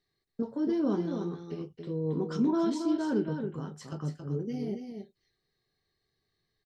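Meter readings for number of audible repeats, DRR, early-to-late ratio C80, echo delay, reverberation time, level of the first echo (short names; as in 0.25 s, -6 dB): 1, none, none, 0.274 s, none, -6.5 dB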